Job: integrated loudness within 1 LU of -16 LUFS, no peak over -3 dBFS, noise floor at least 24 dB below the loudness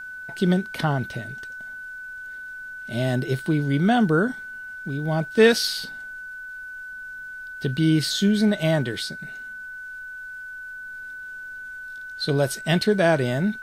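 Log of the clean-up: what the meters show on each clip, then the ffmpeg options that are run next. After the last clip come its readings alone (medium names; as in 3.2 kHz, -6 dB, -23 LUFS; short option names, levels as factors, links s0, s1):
steady tone 1.5 kHz; tone level -34 dBFS; loudness -22.5 LUFS; peak level -4.5 dBFS; loudness target -16.0 LUFS
-> -af "bandreject=f=1500:w=30"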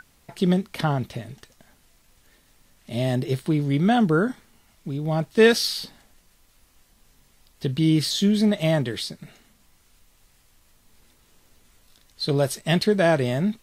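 steady tone not found; loudness -22.5 LUFS; peak level -4.5 dBFS; loudness target -16.0 LUFS
-> -af "volume=2.11,alimiter=limit=0.708:level=0:latency=1"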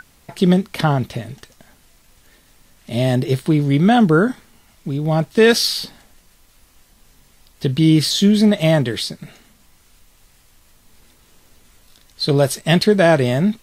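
loudness -16.5 LUFS; peak level -3.0 dBFS; noise floor -54 dBFS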